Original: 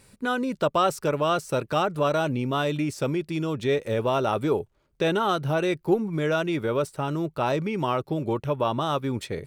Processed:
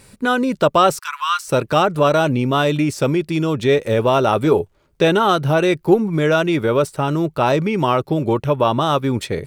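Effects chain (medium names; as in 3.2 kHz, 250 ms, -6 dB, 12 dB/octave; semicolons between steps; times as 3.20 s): 0.99–1.48 s: Chebyshev high-pass 970 Hz, order 6; 4.43–5.05 s: doubling 12 ms -11 dB; trim +8.5 dB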